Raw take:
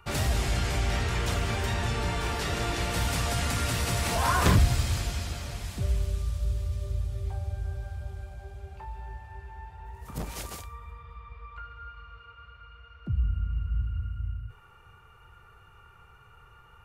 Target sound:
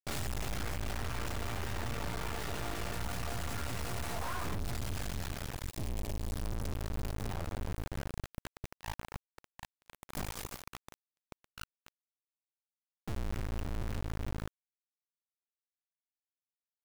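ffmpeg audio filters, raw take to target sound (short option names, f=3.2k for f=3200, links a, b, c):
-filter_complex "[0:a]asettb=1/sr,asplit=3[a][b][c];[a]atrim=end=8.994[d];[b]atrim=start=8.99:end=9.42,asetpts=PTS-STARTPTS,afade=t=in:d=0.004:c=qsin,afade=t=out:st=0.426:d=0.004:c=qsin,adynamicsmooth=sensitivity=6:basefreq=670[e];[c]atrim=start=9.416[f];[d][e]acrossfade=d=0.004:c1=hsin:c2=qsin[g];[g][f]acrossfade=d=0.004:c1=qsin:c2=hsin,aresample=32000,aresample=44100,acrusher=bits=3:dc=4:mix=0:aa=0.000001,volume=32.5dB,asoftclip=hard,volume=-32.5dB,asettb=1/sr,asplit=3[h][i][j];[h]atrim=end=5.694[k];[i]atrim=start=5.69:end=6.31,asetpts=PTS-STARTPTS,afade=t=in:d=0.004:c=qsin,afade=t=out:st=0.616:d=0.004:c=qsin,equalizer=f=1.4k:w=2.8:g=-9[l];[j]atrim=start=6.306[m];[k][l]acrossfade=d=0.004:c1=hsin:c2=qsin[n];[n][m]acrossfade=d=0.004:c1=qsin:c2=hsin,asoftclip=type=tanh:threshold=-33.5dB,agate=range=-33dB:threshold=-53dB:ratio=3:detection=peak,adynamicequalizer=threshold=0.00178:dfrequency=2200:dqfactor=0.7:tfrequency=2200:tqfactor=0.7:attack=5:release=100:ratio=0.375:range=3:mode=cutabove:tftype=highshelf,volume=5dB"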